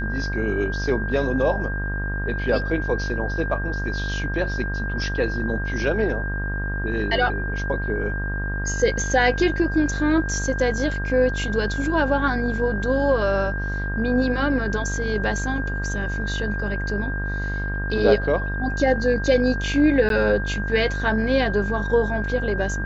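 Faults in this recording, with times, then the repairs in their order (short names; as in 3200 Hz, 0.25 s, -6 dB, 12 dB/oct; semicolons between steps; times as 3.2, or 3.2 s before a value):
buzz 50 Hz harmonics 38 -27 dBFS
tone 1600 Hz -29 dBFS
20.09–20.1 gap 12 ms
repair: notch 1600 Hz, Q 30; de-hum 50 Hz, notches 38; interpolate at 20.09, 12 ms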